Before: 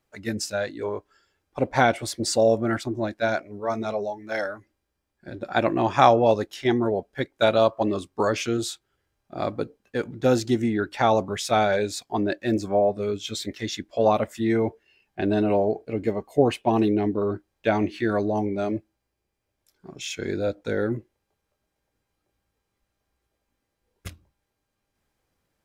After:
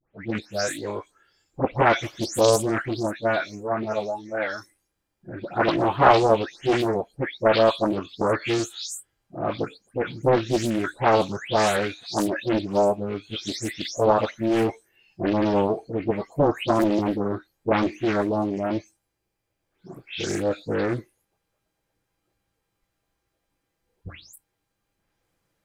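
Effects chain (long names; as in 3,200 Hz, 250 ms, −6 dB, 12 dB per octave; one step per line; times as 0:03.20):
every frequency bin delayed by itself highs late, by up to 279 ms
highs frequency-modulated by the lows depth 0.72 ms
level +2 dB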